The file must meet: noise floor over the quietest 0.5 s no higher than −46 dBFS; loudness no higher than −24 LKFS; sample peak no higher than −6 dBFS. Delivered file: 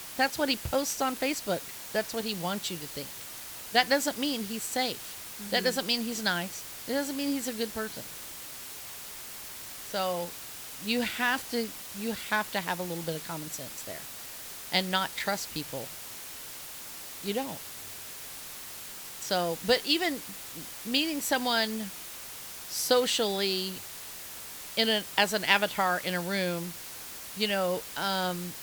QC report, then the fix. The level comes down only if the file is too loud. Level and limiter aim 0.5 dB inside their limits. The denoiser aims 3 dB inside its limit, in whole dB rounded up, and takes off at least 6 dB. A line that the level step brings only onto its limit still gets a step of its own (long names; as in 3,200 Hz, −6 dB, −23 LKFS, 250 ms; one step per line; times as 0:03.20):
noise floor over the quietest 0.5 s −43 dBFS: out of spec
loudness −31.0 LKFS: in spec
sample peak −5.5 dBFS: out of spec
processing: broadband denoise 6 dB, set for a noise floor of −43 dBFS
brickwall limiter −6.5 dBFS